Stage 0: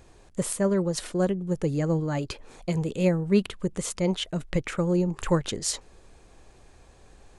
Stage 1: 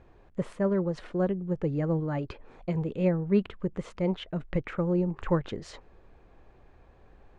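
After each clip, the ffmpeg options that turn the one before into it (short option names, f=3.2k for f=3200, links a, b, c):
-af "lowpass=2.1k,volume=-2.5dB"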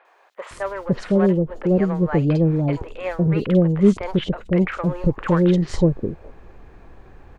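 -filter_complex "[0:a]asplit=2[a][b];[b]volume=29dB,asoftclip=hard,volume=-29dB,volume=-8dB[c];[a][c]amix=inputs=2:normalize=0,acrossover=split=630|3600[d][e][f];[f]adelay=50[g];[d]adelay=510[h];[h][e][g]amix=inputs=3:normalize=0,volume=9dB"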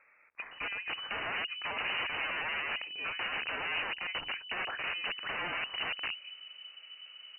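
-af "aeval=exprs='(mod(11.2*val(0)+1,2)-1)/11.2':c=same,lowpass=f=2.6k:t=q:w=0.5098,lowpass=f=2.6k:t=q:w=0.6013,lowpass=f=2.6k:t=q:w=0.9,lowpass=f=2.6k:t=q:w=2.563,afreqshift=-3000,volume=-8dB"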